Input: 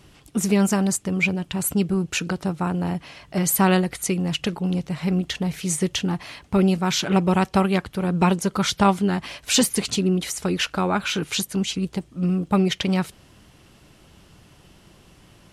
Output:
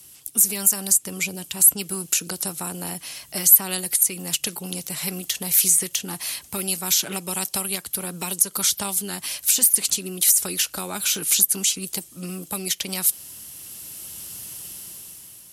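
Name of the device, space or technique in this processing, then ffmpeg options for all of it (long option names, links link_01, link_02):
FM broadcast chain: -filter_complex "[0:a]highpass=59,dynaudnorm=framelen=410:gausssize=5:maxgain=11.5dB,acrossover=split=230|810|3000[link_01][link_02][link_03][link_04];[link_01]acompressor=threshold=-31dB:ratio=4[link_05];[link_02]acompressor=threshold=-22dB:ratio=4[link_06];[link_03]acompressor=threshold=-28dB:ratio=4[link_07];[link_04]acompressor=threshold=-27dB:ratio=4[link_08];[link_05][link_06][link_07][link_08]amix=inputs=4:normalize=0,aemphasis=mode=production:type=75fm,alimiter=limit=-8dB:level=0:latency=1:release=150,asoftclip=type=hard:threshold=-10dB,lowpass=frequency=15000:width=0.5412,lowpass=frequency=15000:width=1.3066,aemphasis=mode=production:type=75fm,volume=-9dB"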